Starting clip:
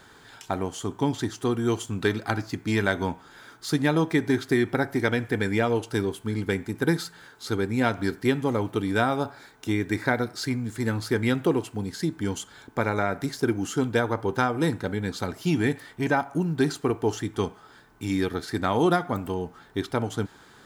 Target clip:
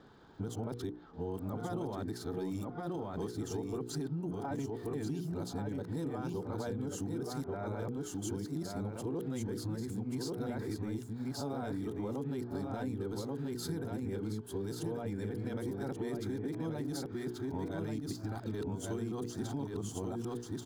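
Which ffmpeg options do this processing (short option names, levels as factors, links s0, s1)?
-filter_complex "[0:a]areverse,bandreject=f=60:t=h:w=6,bandreject=f=120:t=h:w=6,bandreject=f=180:t=h:w=6,bandreject=f=240:t=h:w=6,bandreject=f=300:t=h:w=6,bandreject=f=360:t=h:w=6,bandreject=f=420:t=h:w=6,bandreject=f=480:t=h:w=6,alimiter=limit=0.0891:level=0:latency=1:release=10,aecho=1:1:1134:0.631,acrossover=split=4400[s0][s1];[s1]aeval=exprs='sgn(val(0))*max(abs(val(0))-0.00126,0)':c=same[s2];[s0][s2]amix=inputs=2:normalize=0,equalizer=f=2100:w=0.73:g=-13.5,acompressor=threshold=0.0251:ratio=6,volume=0.794"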